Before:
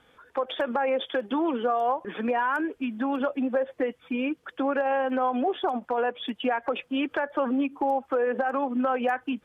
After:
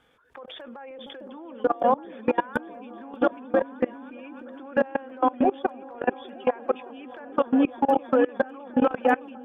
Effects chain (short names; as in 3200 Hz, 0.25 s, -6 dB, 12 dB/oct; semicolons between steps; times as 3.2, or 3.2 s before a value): repeats that get brighter 0.306 s, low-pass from 200 Hz, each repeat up 1 oct, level 0 dB; level quantiser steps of 23 dB; gain +5 dB